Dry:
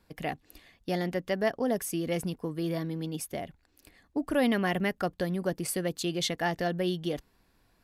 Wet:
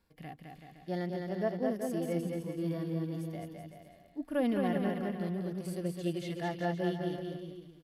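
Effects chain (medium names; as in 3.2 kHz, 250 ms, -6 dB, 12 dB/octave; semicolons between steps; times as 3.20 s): harmonic-percussive split percussive -18 dB; bouncing-ball echo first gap 210 ms, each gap 0.8×, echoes 5; trim -4 dB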